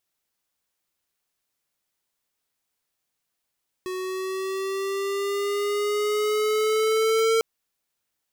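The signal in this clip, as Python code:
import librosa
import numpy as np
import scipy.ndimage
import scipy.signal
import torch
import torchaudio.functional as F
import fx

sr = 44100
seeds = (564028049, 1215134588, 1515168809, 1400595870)

y = fx.riser_tone(sr, length_s=3.55, level_db=-20, wave='square', hz=369.0, rise_st=3.5, swell_db=10.5)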